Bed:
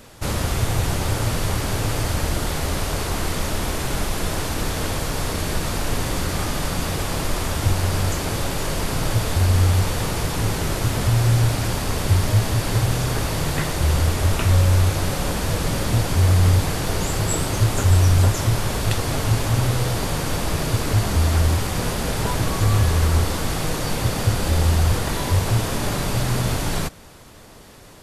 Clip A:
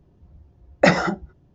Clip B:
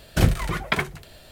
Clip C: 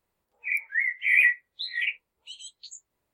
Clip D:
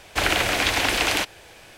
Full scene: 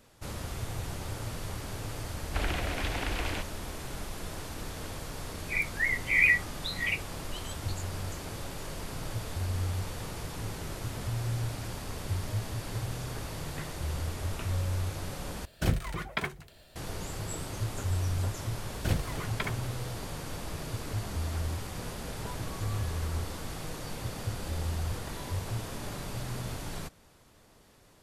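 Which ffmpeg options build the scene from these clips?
ffmpeg -i bed.wav -i cue0.wav -i cue1.wav -i cue2.wav -i cue3.wav -filter_complex "[2:a]asplit=2[link_01][link_02];[0:a]volume=-15dB[link_03];[4:a]aemphasis=mode=reproduction:type=bsi[link_04];[link_03]asplit=2[link_05][link_06];[link_05]atrim=end=15.454[link_07];[link_01]atrim=end=1.31,asetpts=PTS-STARTPTS,volume=-9dB[link_08];[link_06]atrim=start=16.756[link_09];[link_04]atrim=end=1.77,asetpts=PTS-STARTPTS,volume=-13dB,afade=type=in:duration=0.004:curve=hsin,afade=type=out:start_time=1.766:duration=0.004:curve=hsin,adelay=2180[link_10];[3:a]atrim=end=3.13,asetpts=PTS-STARTPTS,volume=-3dB,afade=type=in:duration=0.004:curve=hsin,afade=type=out:start_time=3.126:duration=0.004:curve=hsin,adelay=222705S[link_11];[link_02]atrim=end=1.31,asetpts=PTS-STARTPTS,volume=-11.5dB,afade=type=in:duration=0.004:curve=hsin,afade=type=out:start_time=1.306:duration=0.004:curve=hsin,adelay=18680[link_12];[link_07][link_08]acrossfade=duration=0.004:curve1=hsin:curve2=hsin[link_13];[link_13][link_09]acrossfade=duration=0.004:curve1=hsin:curve2=hsin[link_14];[link_14][link_10][link_11][link_12]amix=inputs=4:normalize=0" out.wav

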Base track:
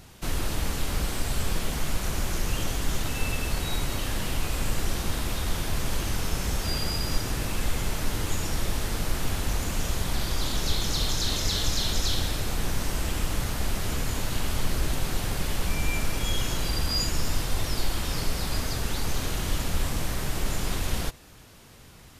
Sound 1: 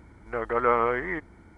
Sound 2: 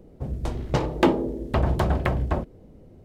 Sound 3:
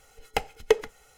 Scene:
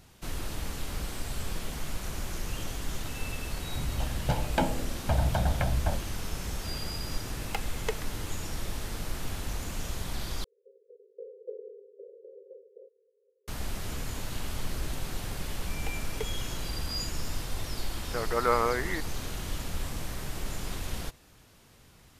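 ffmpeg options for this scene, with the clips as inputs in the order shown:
ffmpeg -i bed.wav -i cue0.wav -i cue1.wav -i cue2.wav -filter_complex "[2:a]asplit=2[link_01][link_02];[3:a]asplit=2[link_03][link_04];[0:a]volume=-7dB[link_05];[link_01]aecho=1:1:1.3:0.87[link_06];[link_03]highpass=650[link_07];[link_02]asuperpass=centerf=460:order=12:qfactor=3.2[link_08];[link_05]asplit=2[link_09][link_10];[link_09]atrim=end=10.444[link_11];[link_08]atrim=end=3.04,asetpts=PTS-STARTPTS,volume=-12dB[link_12];[link_10]atrim=start=13.476[link_13];[link_06]atrim=end=3.04,asetpts=PTS-STARTPTS,volume=-8.5dB,afade=type=in:duration=0.004:curve=hsin,afade=type=out:start_time=3.036:duration=0.004:curve=hsin,adelay=3550[link_14];[link_07]atrim=end=1.17,asetpts=PTS-STARTPTS,volume=-6.5dB,afade=type=in:duration=0.004:curve=hsin,afade=type=out:start_time=1.166:duration=0.004:curve=hsin,adelay=7180[link_15];[link_04]atrim=end=1.17,asetpts=PTS-STARTPTS,volume=-17dB,afade=type=in:duration=0.004:curve=hsin,afade=type=out:start_time=1.166:duration=0.004:curve=hsin,adelay=15500[link_16];[1:a]atrim=end=1.57,asetpts=PTS-STARTPTS,volume=-3dB,afade=type=in:duration=0.004:curve=hsin,afade=type=out:start_time=1.566:duration=0.004:curve=hsin,adelay=17810[link_17];[link_11][link_12]acrossfade=duration=0.004:curve1=hsin:curve2=hsin[link_18];[link_18][link_13]acrossfade=duration=0.004:curve1=hsin:curve2=hsin[link_19];[link_19][link_14][link_15][link_16][link_17]amix=inputs=5:normalize=0" out.wav

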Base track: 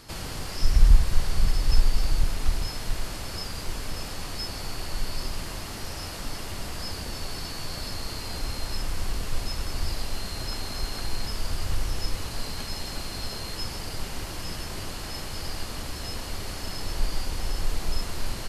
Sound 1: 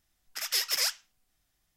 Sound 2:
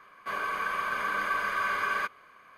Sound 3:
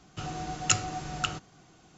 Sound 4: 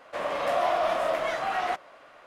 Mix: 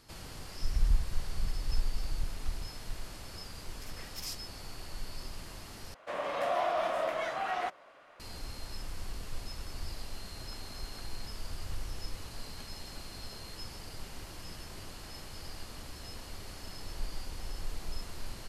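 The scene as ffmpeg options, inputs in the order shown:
ffmpeg -i bed.wav -i cue0.wav -i cue1.wav -i cue2.wav -i cue3.wav -filter_complex "[0:a]volume=-11dB[link_01];[1:a]acrossover=split=2400[link_02][link_03];[link_02]aeval=exprs='val(0)*(1-1/2+1/2*cos(2*PI*1.8*n/s))':channel_layout=same[link_04];[link_03]aeval=exprs='val(0)*(1-1/2-1/2*cos(2*PI*1.8*n/s))':channel_layout=same[link_05];[link_04][link_05]amix=inputs=2:normalize=0[link_06];[link_01]asplit=2[link_07][link_08];[link_07]atrim=end=5.944[link_09];[4:a]atrim=end=2.26,asetpts=PTS-STARTPTS,volume=-5.5dB[link_10];[link_08]atrim=start=8.196[link_11];[link_06]atrim=end=1.76,asetpts=PTS-STARTPTS,volume=-12dB,afade=type=in:duration=0.004:curve=hsin,afade=type=out:start_time=1.756:duration=0.004:curve=hsin,adelay=152145S[link_12];[link_09][link_10]acrossfade=duration=0.004:curve1=hsin:curve2=hsin[link_13];[link_13][link_11]acrossfade=duration=0.004:curve1=hsin:curve2=hsin[link_14];[link_14][link_12]amix=inputs=2:normalize=0" out.wav

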